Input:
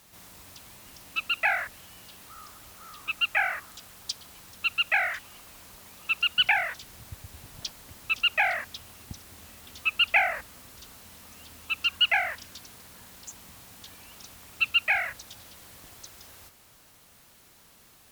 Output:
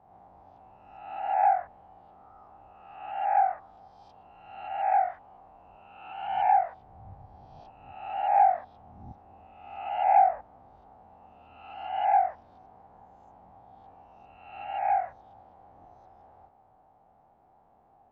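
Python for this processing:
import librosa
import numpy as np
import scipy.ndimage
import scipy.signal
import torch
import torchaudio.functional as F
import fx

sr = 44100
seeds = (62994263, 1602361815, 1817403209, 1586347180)

y = fx.spec_swells(x, sr, rise_s=1.02)
y = fx.lowpass_res(y, sr, hz=780.0, q=9.4)
y = F.gain(torch.from_numpy(y), -9.0).numpy()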